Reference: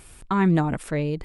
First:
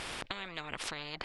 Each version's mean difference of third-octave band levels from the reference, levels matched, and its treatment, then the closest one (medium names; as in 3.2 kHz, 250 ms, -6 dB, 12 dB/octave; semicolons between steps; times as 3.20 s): 15.0 dB: treble shelf 7.9 kHz +8.5 dB; compression 6:1, threshold -30 dBFS, peak gain reduction 13.5 dB; distance through air 230 m; spectrum-flattening compressor 10:1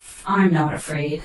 5.0 dB: phase randomisation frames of 100 ms; expander -42 dBFS; bass shelf 430 Hz -7 dB; tape noise reduction on one side only encoder only; trim +6 dB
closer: second